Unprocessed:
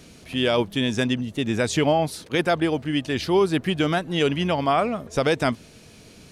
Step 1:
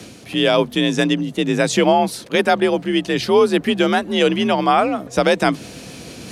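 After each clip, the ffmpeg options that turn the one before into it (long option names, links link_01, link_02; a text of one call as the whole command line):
ffmpeg -i in.wav -af "areverse,acompressor=mode=upward:threshold=-32dB:ratio=2.5,areverse,afreqshift=44,volume=5.5dB" out.wav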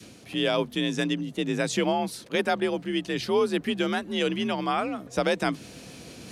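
ffmpeg -i in.wav -af "adynamicequalizer=threshold=0.0355:dfrequency=670:dqfactor=1.1:tfrequency=670:tqfactor=1.1:attack=5:release=100:ratio=0.375:range=2.5:mode=cutabove:tftype=bell,volume=-8.5dB" out.wav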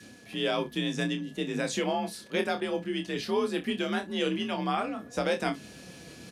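ffmpeg -i in.wav -filter_complex "[0:a]flanger=delay=3.6:depth=2.7:regen=71:speed=0.57:shape=triangular,aeval=exprs='val(0)+0.00224*sin(2*PI*1700*n/s)':channel_layout=same,asplit=2[link_01][link_02];[link_02]aecho=0:1:28|61:0.447|0.133[link_03];[link_01][link_03]amix=inputs=2:normalize=0" out.wav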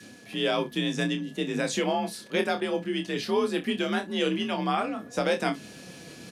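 ffmpeg -i in.wav -af "highpass=100,volume=2.5dB" out.wav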